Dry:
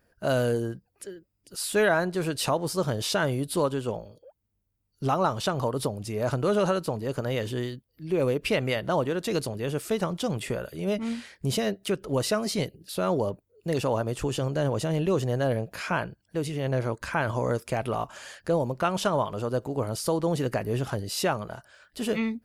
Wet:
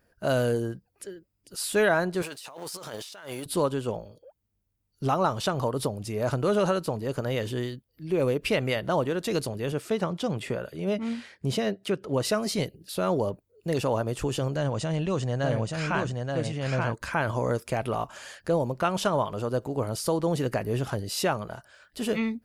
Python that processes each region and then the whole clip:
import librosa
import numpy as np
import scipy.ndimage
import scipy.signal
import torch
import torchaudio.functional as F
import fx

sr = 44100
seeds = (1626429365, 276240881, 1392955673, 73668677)

y = fx.chain(x, sr, fx.law_mismatch(coded='A'),
    fx.highpass(hz=1000.0, slope=6),
    fx.over_compress(threshold_db=-40.0, ratio=-1.0), at=(2.22, 3.46))
y = fx.chain(y, sr, fx.highpass(hz=83.0, slope=12),
    fx.high_shelf(hz=7300.0, db=-10.5), at=(9.72, 12.25))
y = fx.chain(y, sr, fx.steep_lowpass(hz=9100.0, slope=48),
    fx.peak_eq(hz=390.0, db=-6.0, octaves=0.86),
    fx.echo_single(ms=878, db=-3.5), at=(14.56, 16.94))